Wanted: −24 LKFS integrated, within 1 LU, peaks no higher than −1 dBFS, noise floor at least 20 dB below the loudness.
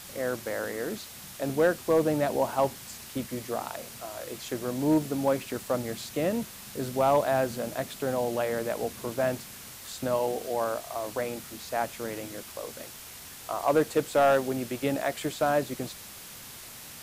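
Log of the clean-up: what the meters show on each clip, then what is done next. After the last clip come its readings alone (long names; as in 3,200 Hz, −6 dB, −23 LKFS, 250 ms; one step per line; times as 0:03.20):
share of clipped samples 0.2%; peaks flattened at −15.5 dBFS; background noise floor −45 dBFS; target noise floor −50 dBFS; integrated loudness −29.5 LKFS; sample peak −15.5 dBFS; target loudness −24.0 LKFS
→ clipped peaks rebuilt −15.5 dBFS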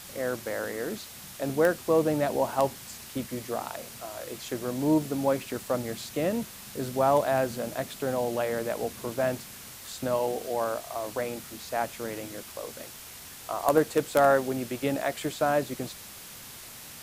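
share of clipped samples 0.0%; background noise floor −45 dBFS; target noise floor −49 dBFS
→ noise reduction from a noise print 6 dB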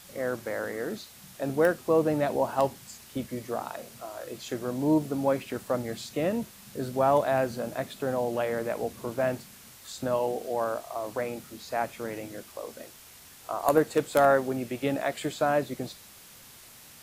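background noise floor −51 dBFS; integrated loudness −29.0 LKFS; sample peak −6.5 dBFS; target loudness −24.0 LKFS
→ level +5 dB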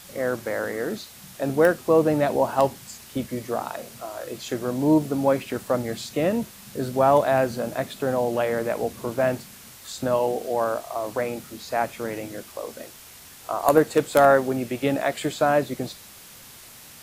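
integrated loudness −24.0 LKFS; sample peak −1.5 dBFS; background noise floor −46 dBFS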